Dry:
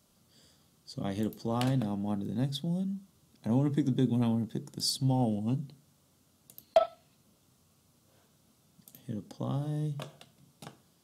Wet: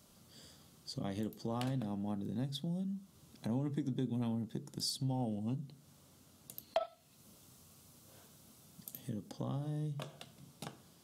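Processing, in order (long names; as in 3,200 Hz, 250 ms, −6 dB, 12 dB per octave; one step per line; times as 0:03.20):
0:06.79–0:09.29: high-shelf EQ 4,700 Hz → 8,000 Hz +6 dB
downward compressor 2 to 1, threshold −48 dBFS, peak gain reduction 16.5 dB
level +4 dB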